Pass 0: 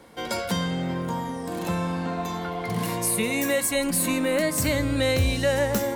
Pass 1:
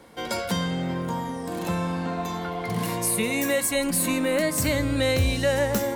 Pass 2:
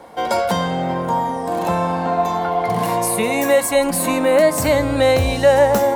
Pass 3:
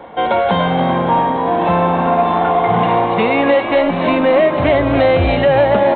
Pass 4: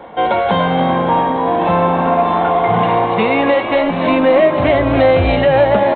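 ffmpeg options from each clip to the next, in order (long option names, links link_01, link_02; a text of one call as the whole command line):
ffmpeg -i in.wav -af anull out.wav
ffmpeg -i in.wav -af "equalizer=frequency=760:width_type=o:width=1.3:gain=13,volume=2.5dB" out.wav
ffmpeg -i in.wav -filter_complex "[0:a]alimiter=limit=-9dB:level=0:latency=1:release=216,aresample=8000,asoftclip=type=tanh:threshold=-11dB,aresample=44100,asplit=7[link_01][link_02][link_03][link_04][link_05][link_06][link_07];[link_02]adelay=287,afreqshift=61,volume=-9dB[link_08];[link_03]adelay=574,afreqshift=122,volume=-14.2dB[link_09];[link_04]adelay=861,afreqshift=183,volume=-19.4dB[link_10];[link_05]adelay=1148,afreqshift=244,volume=-24.6dB[link_11];[link_06]adelay=1435,afreqshift=305,volume=-29.8dB[link_12];[link_07]adelay=1722,afreqshift=366,volume=-35dB[link_13];[link_01][link_08][link_09][link_10][link_11][link_12][link_13]amix=inputs=7:normalize=0,volume=6dB" out.wav
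ffmpeg -i in.wav -filter_complex "[0:a]asplit=2[link_01][link_02];[link_02]adelay=19,volume=-12dB[link_03];[link_01][link_03]amix=inputs=2:normalize=0" out.wav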